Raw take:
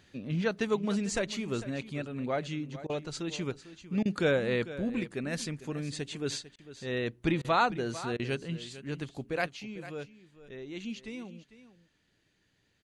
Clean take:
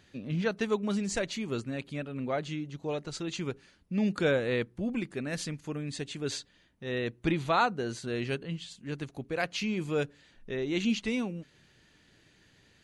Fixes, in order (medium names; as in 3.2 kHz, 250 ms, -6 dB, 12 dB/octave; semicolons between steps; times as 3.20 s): interpolate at 2.87/4.03/6.56/7.42/8.17 s, 24 ms; inverse comb 449 ms -15 dB; gain correction +10.5 dB, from 9.48 s